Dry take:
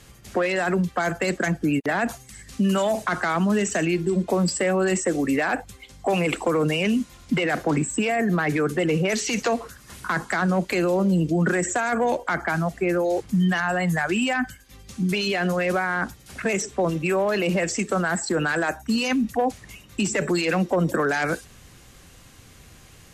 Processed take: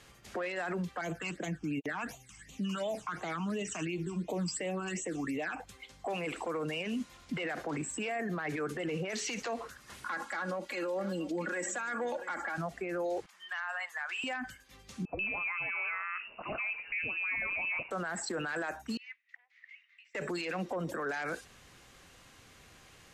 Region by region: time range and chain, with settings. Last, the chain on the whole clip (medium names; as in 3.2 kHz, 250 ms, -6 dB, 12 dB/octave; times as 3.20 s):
1.01–5.60 s: comb 6.5 ms, depth 33% + phase shifter stages 8, 2.8 Hz, lowest notch 510–1600 Hz
10.05–12.58 s: bass shelf 160 Hz -11 dB + comb 3.6 ms, depth 79% + delay 685 ms -21 dB
13.26–14.24 s: high-pass 920 Hz 24 dB/octave + treble shelf 4.4 kHz -10 dB
15.05–17.91 s: frequency inversion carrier 2.8 kHz + bands offset in time lows, highs 140 ms, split 1 kHz
18.97–20.15 s: compression 10:1, threshold -32 dBFS + ladder high-pass 1.9 kHz, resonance 80% + distance through air 220 m
whole clip: low-pass 4 kHz 6 dB/octave; bass shelf 300 Hz -11 dB; peak limiter -25 dBFS; trim -3 dB